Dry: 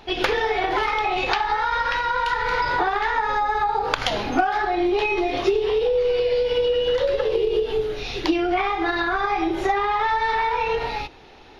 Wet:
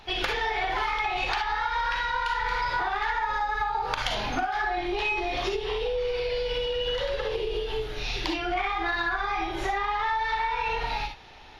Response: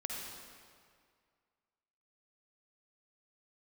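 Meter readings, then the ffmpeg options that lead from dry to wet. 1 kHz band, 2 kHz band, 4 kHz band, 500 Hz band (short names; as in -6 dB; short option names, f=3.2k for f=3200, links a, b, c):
-5.5 dB, -3.5 dB, -2.5 dB, -9.5 dB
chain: -filter_complex "[0:a]equalizer=f=330:w=0.74:g=-8.5,asplit=2[a][b];[b]asoftclip=type=tanh:threshold=-17dB,volume=-5dB[c];[a][c]amix=inputs=2:normalize=0[d];[1:a]atrim=start_sample=2205,atrim=end_sample=4410,asetrate=57330,aresample=44100[e];[d][e]afir=irnorm=-1:irlink=0,acompressor=threshold=-24dB:ratio=6"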